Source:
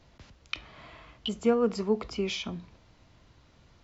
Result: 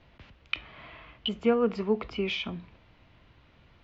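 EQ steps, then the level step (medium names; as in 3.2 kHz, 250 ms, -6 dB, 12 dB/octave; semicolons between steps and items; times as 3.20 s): resonant low-pass 2.8 kHz, resonance Q 1.6; 0.0 dB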